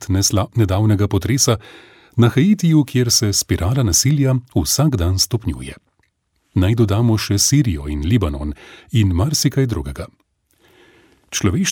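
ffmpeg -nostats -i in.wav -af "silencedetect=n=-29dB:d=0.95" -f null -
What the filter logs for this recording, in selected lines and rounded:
silence_start: 10.06
silence_end: 11.33 | silence_duration: 1.27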